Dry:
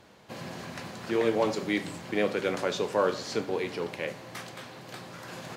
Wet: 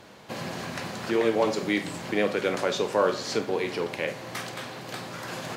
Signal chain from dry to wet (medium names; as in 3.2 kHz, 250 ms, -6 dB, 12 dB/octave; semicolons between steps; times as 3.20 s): in parallel at -0.5 dB: compression, threshold -37 dBFS, peak gain reduction 15.5 dB; on the sum: bass shelf 120 Hz -4.5 dB; flutter echo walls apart 8.4 m, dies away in 0.22 s; trim +1 dB